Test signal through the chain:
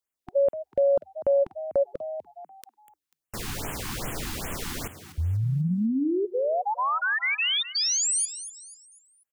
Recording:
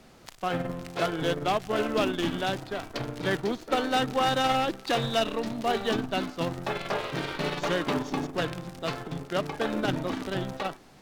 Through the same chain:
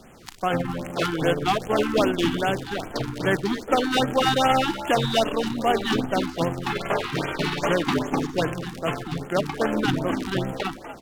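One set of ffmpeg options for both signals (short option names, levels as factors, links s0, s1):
-filter_complex "[0:a]asplit=2[s0][s1];[s1]asplit=4[s2][s3][s4][s5];[s2]adelay=245,afreqshift=72,volume=0.224[s6];[s3]adelay=490,afreqshift=144,volume=0.0891[s7];[s4]adelay=735,afreqshift=216,volume=0.0359[s8];[s5]adelay=980,afreqshift=288,volume=0.0143[s9];[s6][s7][s8][s9]amix=inputs=4:normalize=0[s10];[s0][s10]amix=inputs=2:normalize=0,afftfilt=real='re*(1-between(b*sr/1024,490*pow(4900/490,0.5+0.5*sin(2*PI*2.5*pts/sr))/1.41,490*pow(4900/490,0.5+0.5*sin(2*PI*2.5*pts/sr))*1.41))':imag='im*(1-between(b*sr/1024,490*pow(4900/490,0.5+0.5*sin(2*PI*2.5*pts/sr))/1.41,490*pow(4900/490,0.5+0.5*sin(2*PI*2.5*pts/sr))*1.41))':win_size=1024:overlap=0.75,volume=1.88"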